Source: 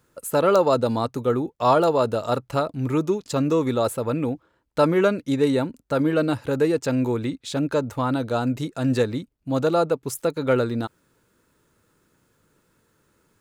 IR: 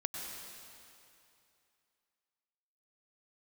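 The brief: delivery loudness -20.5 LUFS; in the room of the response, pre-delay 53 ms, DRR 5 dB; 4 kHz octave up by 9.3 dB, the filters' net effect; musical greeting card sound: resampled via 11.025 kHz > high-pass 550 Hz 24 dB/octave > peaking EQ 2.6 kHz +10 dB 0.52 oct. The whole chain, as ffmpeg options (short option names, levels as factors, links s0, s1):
-filter_complex "[0:a]equalizer=f=4000:t=o:g=7.5,asplit=2[s0][s1];[1:a]atrim=start_sample=2205,adelay=53[s2];[s1][s2]afir=irnorm=-1:irlink=0,volume=0.447[s3];[s0][s3]amix=inputs=2:normalize=0,aresample=11025,aresample=44100,highpass=f=550:w=0.5412,highpass=f=550:w=1.3066,equalizer=f=2600:t=o:w=0.52:g=10,volume=1.58"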